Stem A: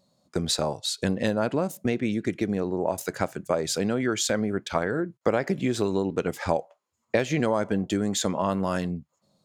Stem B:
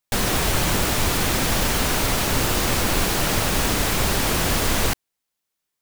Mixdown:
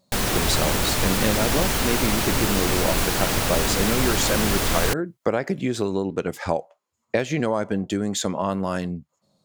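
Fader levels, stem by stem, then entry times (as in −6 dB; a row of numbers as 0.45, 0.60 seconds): +1.0, −1.5 decibels; 0.00, 0.00 seconds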